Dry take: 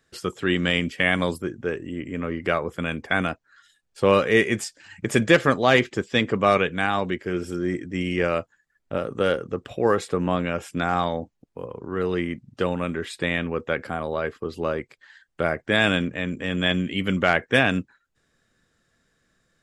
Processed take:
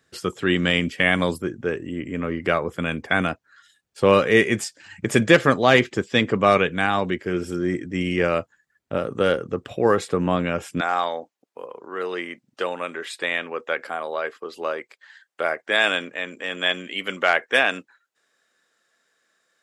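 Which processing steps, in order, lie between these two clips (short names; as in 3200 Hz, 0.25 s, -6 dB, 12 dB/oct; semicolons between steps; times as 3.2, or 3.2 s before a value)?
HPF 68 Hz 12 dB/oct, from 10.81 s 520 Hz; gain +2 dB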